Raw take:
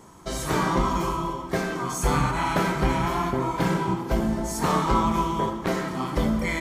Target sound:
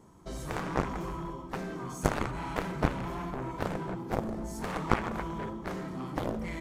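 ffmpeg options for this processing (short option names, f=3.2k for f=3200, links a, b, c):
-af "tiltshelf=f=650:g=4.5,aeval=exprs='0.447*(cos(1*acos(clip(val(0)/0.447,-1,1)))-cos(1*PI/2))+0.2*(cos(3*acos(clip(val(0)/0.447,-1,1)))-cos(3*PI/2))':c=same"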